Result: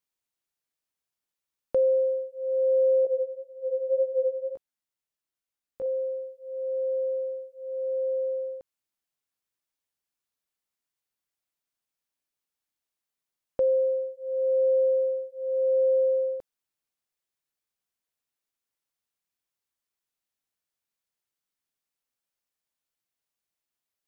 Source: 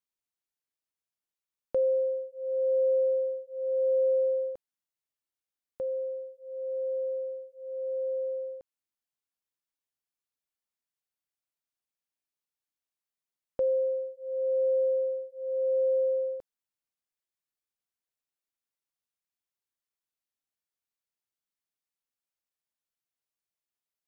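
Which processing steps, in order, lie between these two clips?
3.05–5.86 s: chorus 1.9 Hz, delay 16 ms, depth 4.3 ms; trim +3.5 dB

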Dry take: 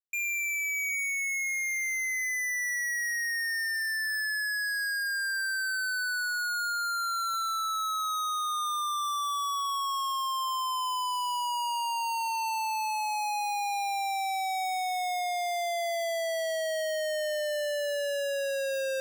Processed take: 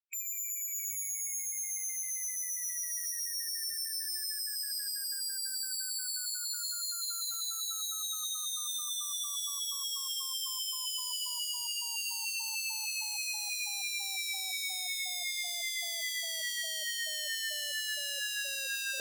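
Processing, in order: spectral gate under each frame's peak -10 dB weak; on a send: feedback echo behind a high-pass 191 ms, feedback 76%, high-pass 4.8 kHz, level -7.5 dB; on the sum: trim +3.5 dB

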